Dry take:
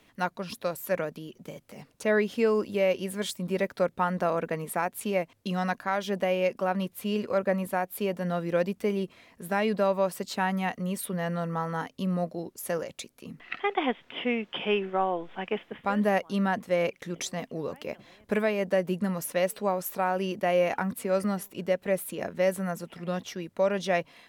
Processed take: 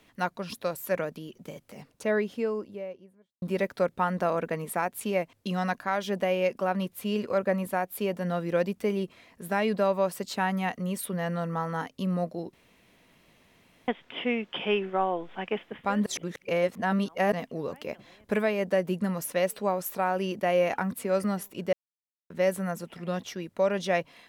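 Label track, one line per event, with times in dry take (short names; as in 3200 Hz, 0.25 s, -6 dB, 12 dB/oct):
1.650000	3.420000	studio fade out
12.530000	13.880000	room tone
16.060000	17.320000	reverse
21.730000	22.300000	mute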